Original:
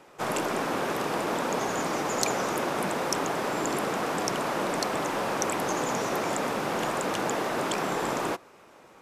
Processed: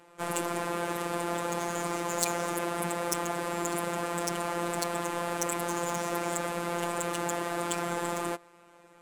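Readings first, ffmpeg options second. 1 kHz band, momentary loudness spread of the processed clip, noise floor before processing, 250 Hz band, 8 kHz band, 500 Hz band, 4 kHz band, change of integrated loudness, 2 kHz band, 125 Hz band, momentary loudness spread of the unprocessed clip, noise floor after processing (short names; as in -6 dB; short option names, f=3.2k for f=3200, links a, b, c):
-3.5 dB, 2 LU, -54 dBFS, -3.0 dB, -0.5 dB, -3.5 dB, -4.5 dB, -3.0 dB, -4.0 dB, -0.5 dB, 1 LU, -57 dBFS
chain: -af "afftfilt=real='hypot(re,im)*cos(PI*b)':imag='0':win_size=1024:overlap=0.75,adynamicsmooth=sensitivity=2.5:basefreq=6.8k,aexciter=amount=5:drive=4.9:freq=7.7k"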